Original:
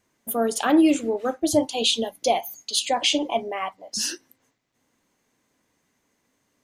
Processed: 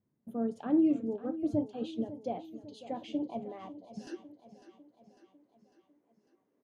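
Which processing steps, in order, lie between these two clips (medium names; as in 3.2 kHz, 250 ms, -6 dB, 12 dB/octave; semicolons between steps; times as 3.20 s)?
band-pass filter 150 Hz, Q 1.5, from 4.07 s 390 Hz; feedback delay 550 ms, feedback 55%, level -14.5 dB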